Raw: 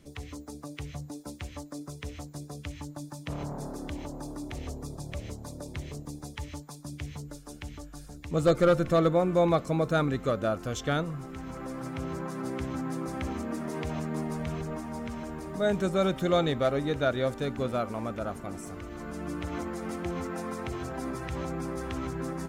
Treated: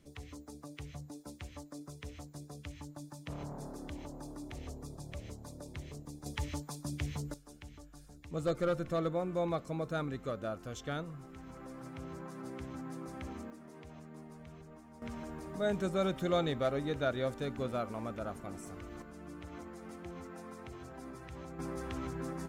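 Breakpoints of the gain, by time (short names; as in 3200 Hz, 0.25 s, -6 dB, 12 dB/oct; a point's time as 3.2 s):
-7 dB
from 6.26 s +1 dB
from 7.34 s -10 dB
from 13.5 s -18 dB
from 15.02 s -6 dB
from 19.02 s -12.5 dB
from 21.59 s -5.5 dB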